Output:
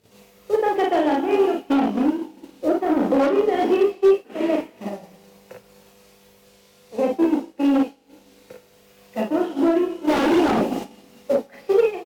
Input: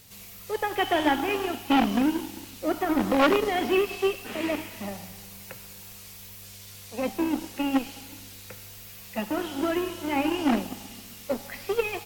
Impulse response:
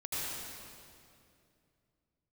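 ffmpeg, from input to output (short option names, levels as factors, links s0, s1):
-filter_complex "[0:a]highpass=46,highshelf=f=9400:g=-10.5,acompressor=mode=upward:threshold=0.0562:ratio=2.5,aecho=1:1:36|54:0.668|0.668,alimiter=limit=0.2:level=0:latency=1:release=289,asplit=3[s0][s1][s2];[s0]afade=t=out:st=10.07:d=0.02[s3];[s1]acontrast=87,afade=t=in:st=10.07:d=0.02,afade=t=out:st=10.83:d=0.02[s4];[s2]afade=t=in:st=10.83:d=0.02[s5];[s3][s4][s5]amix=inputs=3:normalize=0,aeval=exprs='0.126*(abs(mod(val(0)/0.126+3,4)-2)-1)':c=same,agate=range=0.0224:threshold=0.0708:ratio=3:detection=peak,equalizer=f=430:w=0.56:g=14.5,volume=0.596"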